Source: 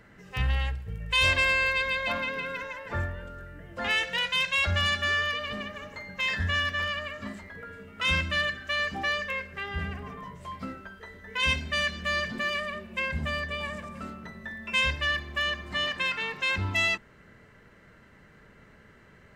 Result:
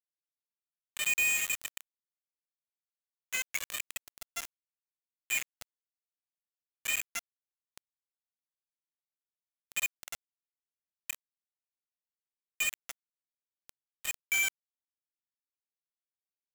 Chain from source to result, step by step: Butterworth band-pass 2 kHz, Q 5.4; tape speed +17%; bit crusher 5-bit

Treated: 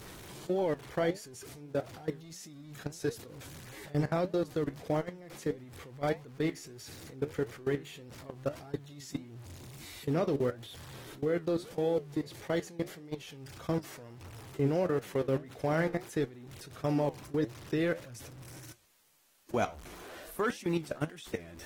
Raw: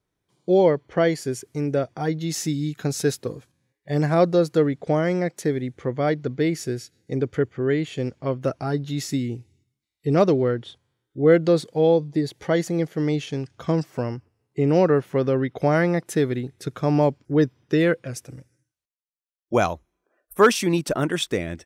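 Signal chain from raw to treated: jump at every zero crossing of -32 dBFS; level held to a coarse grid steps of 20 dB; flange 1.6 Hz, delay 8.2 ms, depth 7.2 ms, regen +70%; trim -4 dB; AAC 48 kbps 48 kHz

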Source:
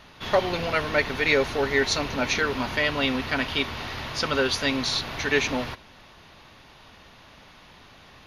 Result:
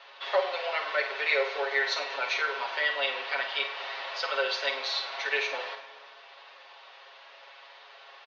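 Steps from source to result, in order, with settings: steep high-pass 480 Hz 36 dB/octave; comb 7.3 ms, depth 82%; flutter echo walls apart 8.5 m, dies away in 0.33 s; in parallel at 0 dB: compression, threshold -37 dBFS, peak gain reduction 21 dB; on the sum: low-pass 4.7 kHz 24 dB/octave; on a send at -10 dB: reverberation RT60 1.9 s, pre-delay 5 ms; on the sum: trim -8 dB

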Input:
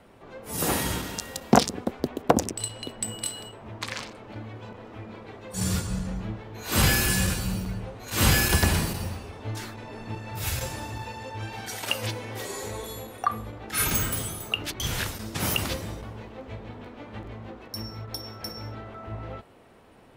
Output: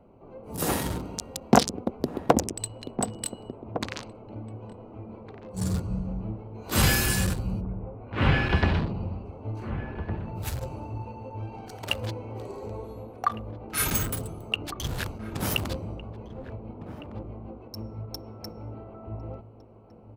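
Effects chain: local Wiener filter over 25 samples; 7.60–9.24 s: low-pass 1.9 kHz -> 4.8 kHz 24 dB/octave; echo from a far wall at 250 m, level -11 dB

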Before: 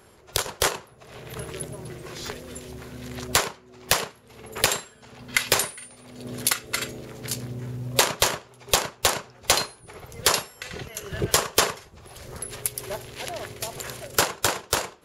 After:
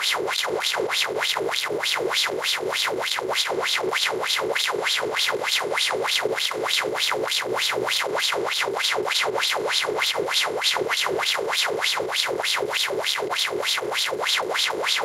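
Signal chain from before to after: spectral levelling over time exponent 0.2; treble shelf 7.3 kHz +12 dB; peak limiter -6.5 dBFS, peak gain reduction 18 dB; wah-wah 3.3 Hz 360–3800 Hz, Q 4.4; trim +7.5 dB

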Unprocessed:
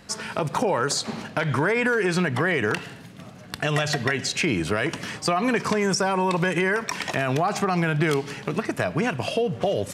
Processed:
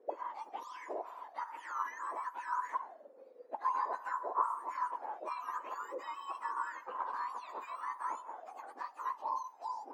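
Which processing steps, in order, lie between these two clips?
spectrum inverted on a logarithmic axis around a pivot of 1.7 kHz; dynamic bell 3.8 kHz, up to -5 dB, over -42 dBFS, Q 1.1; auto-wah 450–1000 Hz, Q 14, up, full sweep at -28 dBFS; trim +7 dB

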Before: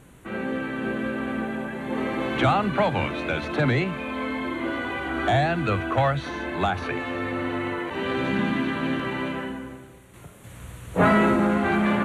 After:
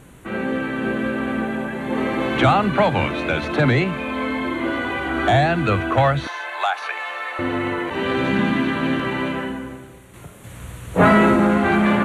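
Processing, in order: 6.27–7.39 s: high-pass 690 Hz 24 dB/octave; trim +5 dB

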